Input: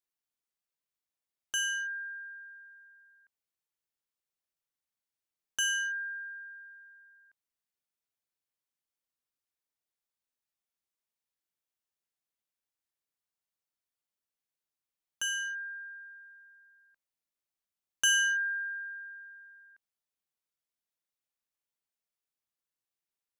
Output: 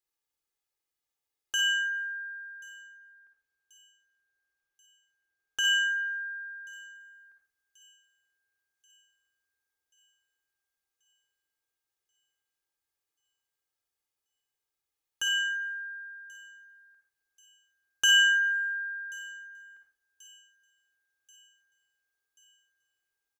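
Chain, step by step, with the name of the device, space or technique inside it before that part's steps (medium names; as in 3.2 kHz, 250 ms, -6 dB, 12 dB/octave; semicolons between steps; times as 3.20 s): microphone above a desk (comb 2.4 ms, depth 65%; reverberation RT60 0.50 s, pre-delay 47 ms, DRR 3 dB); 2.87–5.65 s: treble shelf 5.3 kHz -5.5 dB; feedback echo behind a high-pass 1084 ms, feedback 57%, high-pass 4.5 kHz, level -20 dB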